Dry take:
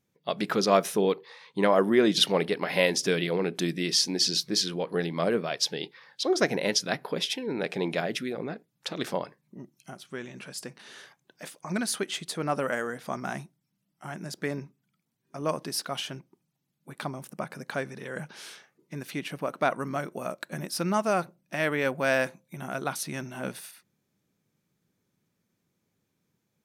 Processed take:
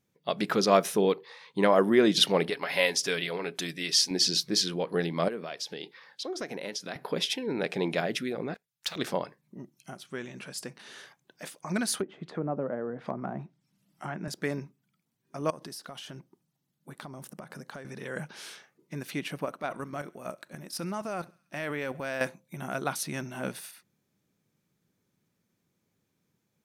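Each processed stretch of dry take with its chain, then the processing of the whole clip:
2.50–4.11 s: peaking EQ 200 Hz -10 dB 2.9 oct + comb 7.2 ms, depth 37%
5.28–6.96 s: high-pass 170 Hz + compression 3:1, threshold -35 dBFS
8.54–8.96 s: amplifier tone stack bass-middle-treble 10-0-10 + waveshaping leveller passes 2
12.00–14.28 s: low-pass that closes with the level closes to 630 Hz, closed at -28.5 dBFS + hard clipper -20 dBFS + three bands compressed up and down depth 40%
15.50–17.85 s: compression 10:1, threshold -38 dBFS + peaking EQ 2.4 kHz -5 dB 0.26 oct
19.45–22.21 s: level held to a coarse grid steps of 11 dB + transient shaper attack -4 dB, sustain +1 dB + thinning echo 68 ms, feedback 65%, high-pass 1 kHz, level -23 dB
whole clip: none

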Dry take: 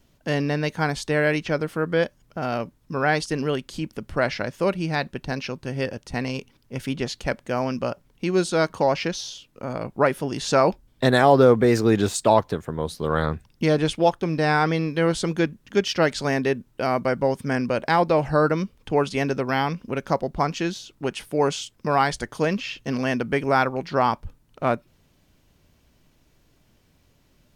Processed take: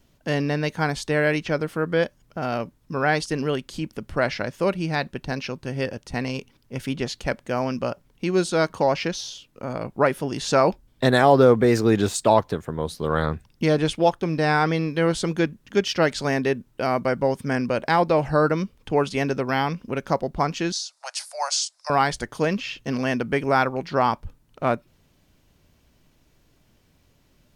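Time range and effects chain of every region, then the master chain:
20.72–21.90 s: steep high-pass 600 Hz 72 dB/octave + resonant high shelf 3.8 kHz +7 dB, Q 3 + careless resampling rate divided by 2×, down none, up filtered
whole clip: none

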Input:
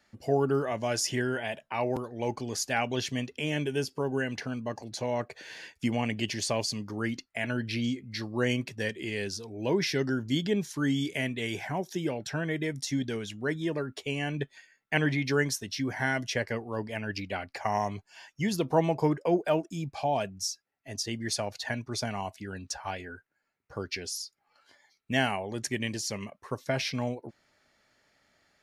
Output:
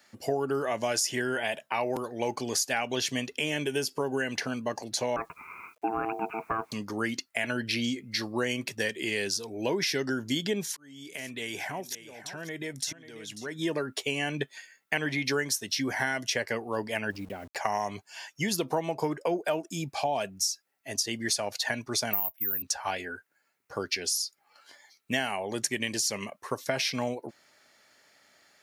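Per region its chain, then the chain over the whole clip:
5.16–6.72 s: steep low-pass 2 kHz 96 dB/octave + word length cut 12-bit, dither none + ring modulator 560 Hz
10.63–13.59 s: compression 3:1, threshold -38 dBFS + slow attack 663 ms + delay 542 ms -14 dB
17.10–17.56 s: send-on-delta sampling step -45.5 dBFS + compression 3:1, threshold -43 dBFS + tilt shelf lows +9.5 dB, about 720 Hz
22.13–22.62 s: Savitzky-Golay filter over 25 samples + careless resampling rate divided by 3×, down filtered, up zero stuff + upward expansion, over -50 dBFS
whole clip: high-pass 330 Hz 6 dB/octave; treble shelf 6.9 kHz +8.5 dB; compression 6:1, threshold -31 dBFS; trim +6 dB

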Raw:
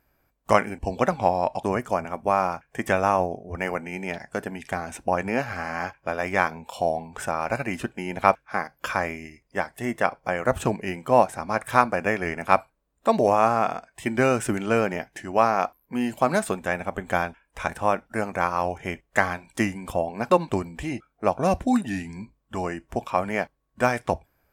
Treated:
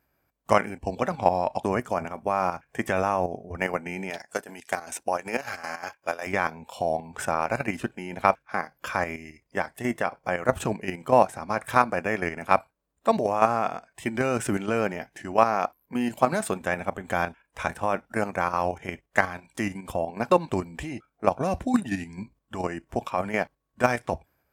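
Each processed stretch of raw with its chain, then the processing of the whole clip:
4.10–6.27 s: tone controls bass -12 dB, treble +9 dB + square tremolo 5.2 Hz, depth 65%, duty 60%
whole clip: level held to a coarse grid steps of 9 dB; high-pass 53 Hz; level rider gain up to 3 dB

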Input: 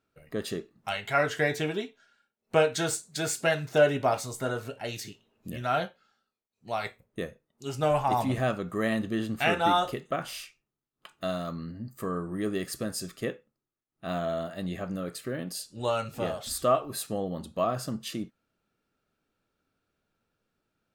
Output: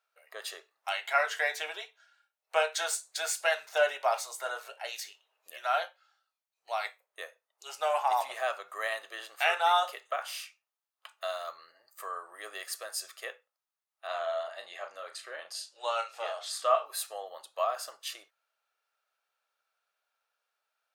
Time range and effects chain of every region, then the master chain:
14.07–16.86 s: low-pass 7.3 kHz + doubling 35 ms -8.5 dB
whole clip: inverse Chebyshev high-pass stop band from 250 Hz, stop band 50 dB; band-stop 7.6 kHz, Q 24

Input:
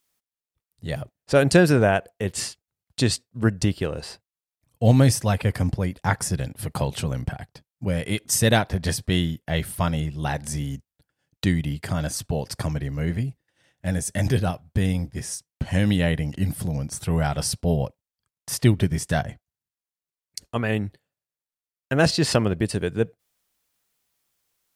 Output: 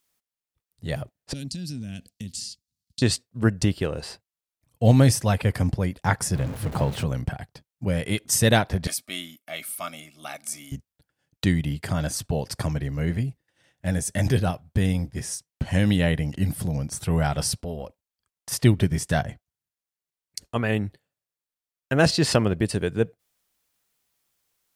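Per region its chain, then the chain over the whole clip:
1.33–3.02 s: FFT filter 140 Hz 0 dB, 250 Hz +5 dB, 380 Hz -17 dB, 1 kHz -30 dB, 4.5 kHz +9 dB, 13 kHz 0 dB + compression 10:1, threshold -30 dBFS
6.35–7.04 s: jump at every zero crossing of -28.5 dBFS + treble shelf 2.8 kHz -10.5 dB
8.87–10.72 s: differentiator + small resonant body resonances 260/630/1200/2200 Hz, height 17 dB, ringing for 25 ms
17.62–18.52 s: peaking EQ 130 Hz -13.5 dB 0.54 oct + compression 2.5:1, threshold -31 dBFS
whole clip: none

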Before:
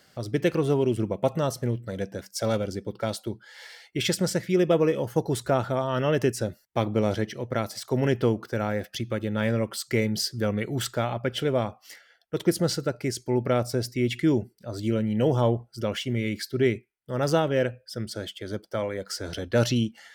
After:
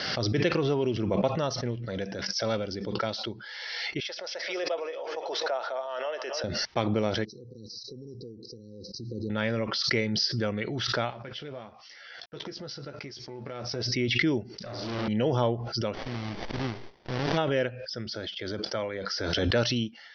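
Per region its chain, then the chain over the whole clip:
4.00–6.44 s: ladder high-pass 520 Hz, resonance 45% + feedback delay 269 ms, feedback 35%, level -16.5 dB
7.25–9.30 s: compression 3:1, threshold -40 dBFS + brick-wall FIR band-stop 520–3800 Hz
11.10–13.86 s: companding laws mixed up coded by A + compression 2.5:1, threshold -40 dBFS + doubling 14 ms -8 dB
14.54–15.08 s: tone controls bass +1 dB, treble +3 dB + flutter echo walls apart 6 m, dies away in 1.3 s + valve stage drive 33 dB, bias 0.55
15.93–17.36 s: formants flattened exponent 0.3 + compression 2:1, threshold -27 dBFS + sliding maximum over 33 samples
whole clip: steep low-pass 5.7 kHz 96 dB/octave; tilt EQ +1.5 dB/octave; swell ahead of each attack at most 26 dB/s; trim -2 dB

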